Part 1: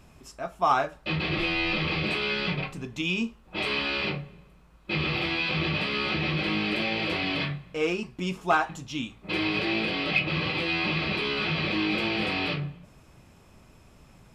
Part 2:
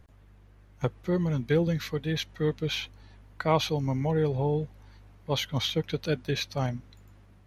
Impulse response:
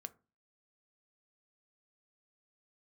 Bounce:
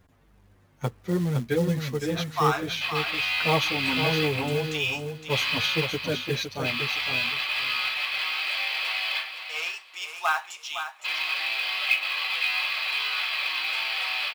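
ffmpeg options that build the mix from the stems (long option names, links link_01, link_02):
-filter_complex "[0:a]highpass=frequency=810:width=0.5412,highpass=frequency=810:width=1.3066,highshelf=frequency=2200:gain=6,adelay=1750,volume=-2.5dB,asplit=3[link_01][link_02][link_03];[link_02]volume=-13.5dB[link_04];[link_03]volume=-8dB[link_05];[1:a]asplit=2[link_06][link_07];[link_07]adelay=7.9,afreqshift=-1.8[link_08];[link_06][link_08]amix=inputs=2:normalize=1,volume=2.5dB,asplit=3[link_09][link_10][link_11];[link_10]volume=-13.5dB[link_12];[link_11]volume=-5.5dB[link_13];[2:a]atrim=start_sample=2205[link_14];[link_04][link_12]amix=inputs=2:normalize=0[link_15];[link_15][link_14]afir=irnorm=-1:irlink=0[link_16];[link_05][link_13]amix=inputs=2:normalize=0,aecho=0:1:512|1024|1536:1|0.2|0.04[link_17];[link_01][link_09][link_16][link_17]amix=inputs=4:normalize=0,lowshelf=frequency=72:gain=-10.5,acrusher=bits=5:mode=log:mix=0:aa=0.000001"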